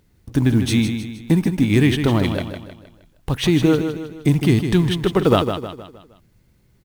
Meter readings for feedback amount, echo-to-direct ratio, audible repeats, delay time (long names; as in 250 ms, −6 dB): 44%, −7.0 dB, 4, 156 ms